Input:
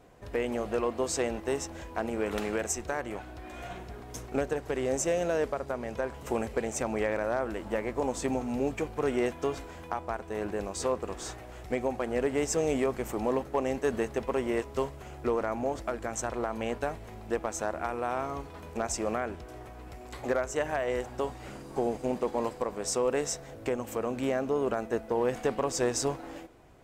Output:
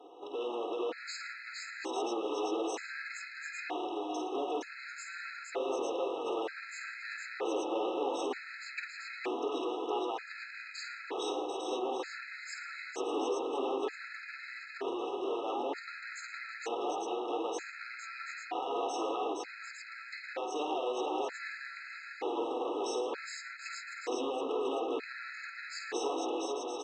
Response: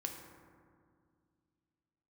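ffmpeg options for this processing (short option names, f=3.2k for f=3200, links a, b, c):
-filter_complex "[0:a]highshelf=f=3.8k:g=-8,aecho=1:1:2.4:0.78,alimiter=level_in=2dB:limit=-24dB:level=0:latency=1,volume=-2dB,volume=35.5dB,asoftclip=hard,volume=-35.5dB,highpass=f=300:w=0.5412,highpass=f=300:w=1.3066,equalizer=f=300:t=q:w=4:g=8,equalizer=f=700:t=q:w=4:g=5,equalizer=f=1k:t=q:w=4:g=6,equalizer=f=1.9k:t=q:w=4:g=8,equalizer=f=2.7k:t=q:w=4:g=7,equalizer=f=4k:t=q:w=4:g=10,lowpass=f=6.7k:w=0.5412,lowpass=f=6.7k:w=1.3066,asplit=2[a][b];[b]aecho=0:1:51|114|170|465|740|849:0.447|0.178|0.106|0.708|0.447|0.562[c];[a][c]amix=inputs=2:normalize=0,afftfilt=real='re*gt(sin(2*PI*0.54*pts/sr)*(1-2*mod(floor(b*sr/1024/1300),2)),0)':imag='im*gt(sin(2*PI*0.54*pts/sr)*(1-2*mod(floor(b*sr/1024/1300),2)),0)':win_size=1024:overlap=0.75"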